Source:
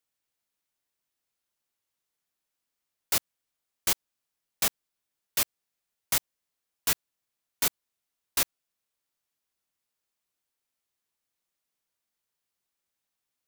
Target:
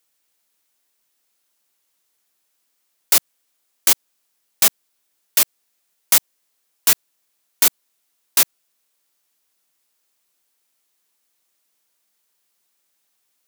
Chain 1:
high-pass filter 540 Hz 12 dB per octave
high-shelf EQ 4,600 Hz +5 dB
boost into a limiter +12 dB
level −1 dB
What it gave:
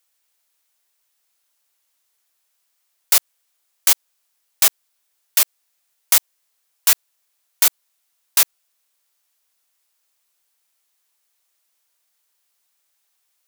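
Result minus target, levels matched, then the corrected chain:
250 Hz band −10.5 dB
high-pass filter 200 Hz 12 dB per octave
high-shelf EQ 4,600 Hz +5 dB
boost into a limiter +12 dB
level −1 dB

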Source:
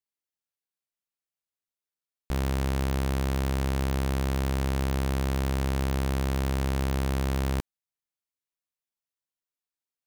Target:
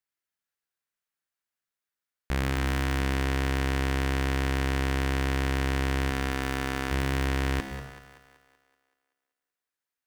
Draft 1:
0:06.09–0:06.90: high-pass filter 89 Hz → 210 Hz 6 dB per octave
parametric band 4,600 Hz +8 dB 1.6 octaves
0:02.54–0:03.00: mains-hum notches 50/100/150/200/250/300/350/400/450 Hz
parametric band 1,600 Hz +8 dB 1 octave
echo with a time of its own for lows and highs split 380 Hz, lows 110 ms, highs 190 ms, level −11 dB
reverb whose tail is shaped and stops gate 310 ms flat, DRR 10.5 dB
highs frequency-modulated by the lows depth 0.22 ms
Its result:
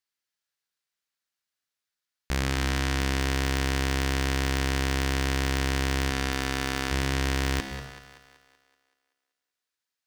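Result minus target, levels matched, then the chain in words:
4,000 Hz band +4.0 dB
0:02.54–0:03.00: mains-hum notches 50/100/150/200/250/300/350/400/450 Hz
0:06.09–0:06.90: high-pass filter 89 Hz → 210 Hz 6 dB per octave
parametric band 1,600 Hz +8 dB 1 octave
echo with a time of its own for lows and highs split 380 Hz, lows 110 ms, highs 190 ms, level −11 dB
reverb whose tail is shaped and stops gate 310 ms flat, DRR 10.5 dB
highs frequency-modulated by the lows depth 0.22 ms

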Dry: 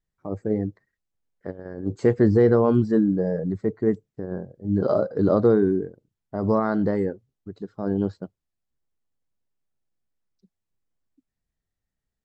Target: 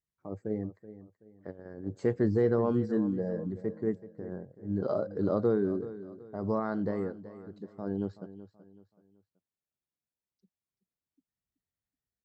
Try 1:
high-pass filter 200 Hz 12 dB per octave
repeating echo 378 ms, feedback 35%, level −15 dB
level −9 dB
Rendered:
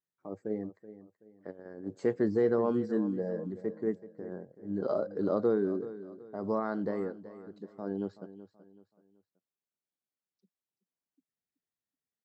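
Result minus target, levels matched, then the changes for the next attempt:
125 Hz band −6.0 dB
change: high-pass filter 59 Hz 12 dB per octave

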